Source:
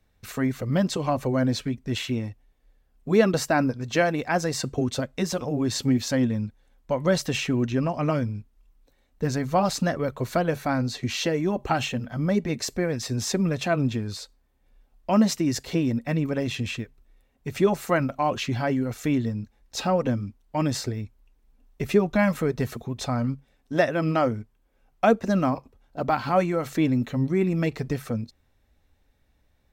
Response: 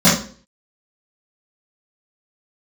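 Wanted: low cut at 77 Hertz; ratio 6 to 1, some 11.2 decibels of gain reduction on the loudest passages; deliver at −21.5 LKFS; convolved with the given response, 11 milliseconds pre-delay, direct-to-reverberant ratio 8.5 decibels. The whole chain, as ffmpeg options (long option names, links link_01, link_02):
-filter_complex "[0:a]highpass=77,acompressor=threshold=-26dB:ratio=6,asplit=2[link_01][link_02];[1:a]atrim=start_sample=2205,adelay=11[link_03];[link_02][link_03]afir=irnorm=-1:irlink=0,volume=-33dB[link_04];[link_01][link_04]amix=inputs=2:normalize=0,volume=6.5dB"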